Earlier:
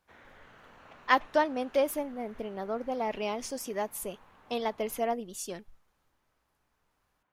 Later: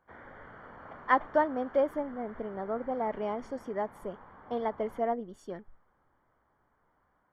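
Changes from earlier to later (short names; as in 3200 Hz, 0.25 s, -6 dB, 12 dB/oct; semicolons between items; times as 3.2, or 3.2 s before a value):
background +7.0 dB; master: add polynomial smoothing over 41 samples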